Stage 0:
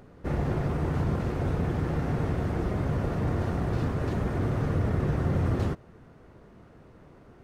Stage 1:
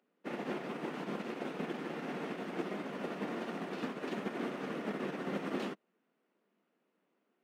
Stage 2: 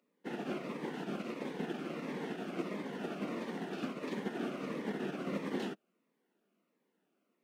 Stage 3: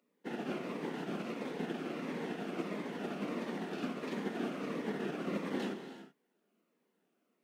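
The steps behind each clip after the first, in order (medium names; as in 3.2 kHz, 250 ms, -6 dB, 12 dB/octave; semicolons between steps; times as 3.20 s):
steep high-pass 190 Hz 48 dB/octave; peaking EQ 2.8 kHz +9 dB 1.1 oct; upward expansion 2.5:1, over -44 dBFS; trim -3 dB
Shepard-style phaser falling 1.5 Hz; trim +1 dB
gated-style reverb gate 400 ms flat, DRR 7 dB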